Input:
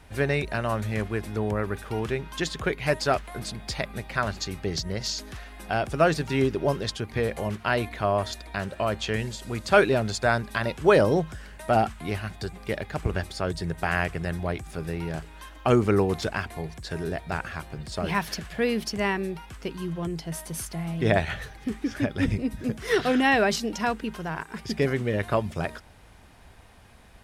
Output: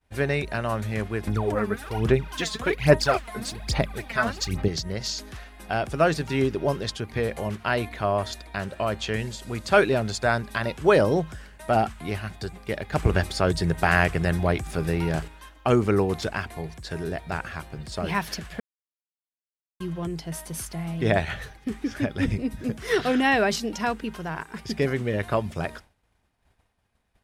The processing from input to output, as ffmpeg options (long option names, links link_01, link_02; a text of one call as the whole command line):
ffmpeg -i in.wav -filter_complex "[0:a]asettb=1/sr,asplit=3[link_01][link_02][link_03];[link_01]atrim=end=1.274[link_04];[link_02]atrim=start=1.27:end=4.68,asetpts=PTS-STARTPTS,afade=type=in:duration=0.004:curve=qsin,afade=type=out:start_time=3.406:duration=0.004:curve=qsin,aphaser=in_gain=1:out_gain=1:delay=4.7:decay=0.7:speed=1.2:type=sinusoidal[link_05];[link_03]atrim=start=4.676[link_06];[link_04][link_05]acrossfade=duration=0.004:curve1=hsin:curve2=qsin[link_07];[link_07][link_06]acrossfade=duration=0.004:curve1=qsin:curve2=hsin,asettb=1/sr,asplit=3[link_08][link_09][link_10];[link_08]atrim=end=12.924[link_11];[link_09]atrim=start=12.92:end=15.28,asetpts=PTS-STARTPTS,afade=type=in:duration=0.004:curve=qsin,afade=type=out:start_time=2.356:duration=0.004:curve=qsin,acontrast=57[link_12];[link_10]atrim=start=15.276[link_13];[link_11][link_12]acrossfade=duration=0.004:curve1=hsin:curve2=qsin[link_14];[link_14][link_13]acrossfade=duration=0.004:curve1=qsin:curve2=hsin,asplit=3[link_15][link_16][link_17];[link_15]atrim=end=18.6,asetpts=PTS-STARTPTS,afade=type=out:start_time=18.596:duration=0.004:curve=hsin[link_18];[link_16]atrim=start=18.6:end=19.8,asetpts=PTS-STARTPTS,volume=0[link_19];[link_17]atrim=start=19.8,asetpts=PTS-STARTPTS,afade=type=in:duration=0.004:curve=hsin[link_20];[link_18][link_19][link_20]concat=n=3:v=0:a=1,agate=range=-33dB:threshold=-39dB:ratio=3:detection=peak" out.wav